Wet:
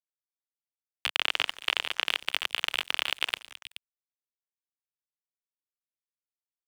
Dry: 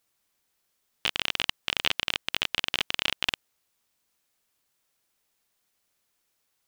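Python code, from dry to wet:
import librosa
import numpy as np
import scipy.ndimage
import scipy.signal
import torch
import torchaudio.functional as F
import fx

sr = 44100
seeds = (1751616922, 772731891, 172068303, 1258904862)

p1 = fx.notch(x, sr, hz=3900.0, q=20.0)
p2 = np.clip(p1, -10.0 ** (-9.5 / 20.0), 10.0 ** (-9.5 / 20.0))
p3 = p1 + (p2 * librosa.db_to_amplitude(-3.0))
p4 = fx.high_shelf(p3, sr, hz=8600.0, db=-10.5, at=(1.16, 2.07))
p5 = fx.over_compress(p4, sr, threshold_db=-33.0, ratio=-1.0)
p6 = scipy.signal.sosfilt(scipy.signal.cheby1(8, 1.0, 240.0, 'highpass', fs=sr, output='sos'), p5)
p7 = fx.echo_stepped(p6, sr, ms=142, hz=500.0, octaves=1.4, feedback_pct=70, wet_db=-8)
p8 = fx.rev_schroeder(p7, sr, rt60_s=3.2, comb_ms=26, drr_db=12.0)
p9 = fx.dynamic_eq(p8, sr, hz=6100.0, q=1.8, threshold_db=-53.0, ratio=4.0, max_db=-6)
p10 = np.sign(p9) * np.maximum(np.abs(p9) - 10.0 ** (-40.5 / 20.0), 0.0)
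p11 = fx.band_squash(p10, sr, depth_pct=40)
y = p11 * librosa.db_to_amplitude(5.5)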